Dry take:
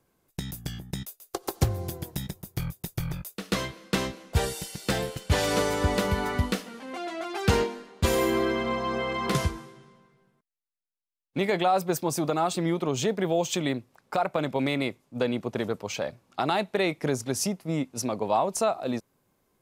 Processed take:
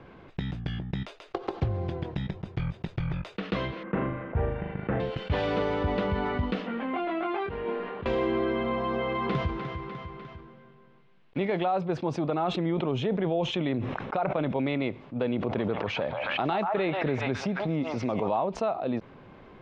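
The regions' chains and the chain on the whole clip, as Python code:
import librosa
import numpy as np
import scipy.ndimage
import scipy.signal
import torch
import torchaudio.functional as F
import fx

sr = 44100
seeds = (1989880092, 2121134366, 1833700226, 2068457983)

y = fx.chain(x, sr, fx.lowpass(hz=1900.0, slope=24),
    fx.room_flutter(wall_m=6.7, rt60_s=0.45), at=(3.83, 5.0))
y = fx.chain(y, sr, fx.lowpass(hz=2800.0, slope=12),
    fx.over_compress(threshold_db=-34.0, ratio=-1.0),
    fx.doubler(ms=22.0, db=-5.5), at=(6.67, 8.06))
y = fx.chain(y, sr, fx.block_float(bits=5),
    fx.echo_feedback(ms=300, feedback_pct=38, wet_db=-16), at=(8.78, 11.65))
y = fx.chain(y, sr, fx.notch(hz=4600.0, q=6.8),
    fx.sustainer(db_per_s=59.0), at=(12.35, 14.66))
y = fx.chain(y, sr, fx.echo_stepped(ms=136, hz=970.0, octaves=0.7, feedback_pct=70, wet_db=-3),
    fx.pre_swell(db_per_s=48.0), at=(15.29, 18.32))
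y = scipy.signal.sosfilt(scipy.signal.butter(4, 3100.0, 'lowpass', fs=sr, output='sos'), y)
y = fx.dynamic_eq(y, sr, hz=1800.0, q=0.91, threshold_db=-41.0, ratio=4.0, max_db=-4)
y = fx.env_flatten(y, sr, amount_pct=50)
y = F.gain(torch.from_numpy(y), -5.0).numpy()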